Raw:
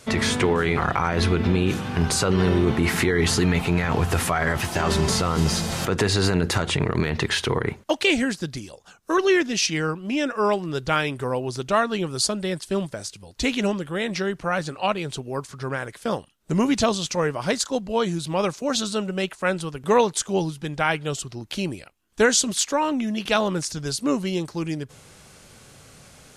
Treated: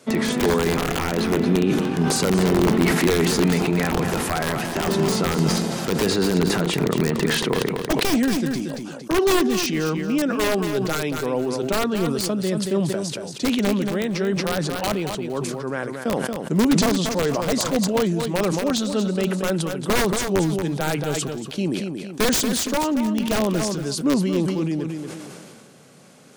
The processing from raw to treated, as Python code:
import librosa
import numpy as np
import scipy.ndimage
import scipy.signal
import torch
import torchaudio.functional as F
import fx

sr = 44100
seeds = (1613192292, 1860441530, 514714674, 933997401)

y = scipy.signal.sosfilt(scipy.signal.butter(4, 170.0, 'highpass', fs=sr, output='sos'), x)
y = (np.mod(10.0 ** (13.0 / 20.0) * y + 1.0, 2.0) - 1.0) / 10.0 ** (13.0 / 20.0)
y = fx.tilt_shelf(y, sr, db=5.0, hz=680.0)
y = fx.echo_feedback(y, sr, ms=230, feedback_pct=23, wet_db=-9)
y = fx.sustainer(y, sr, db_per_s=27.0)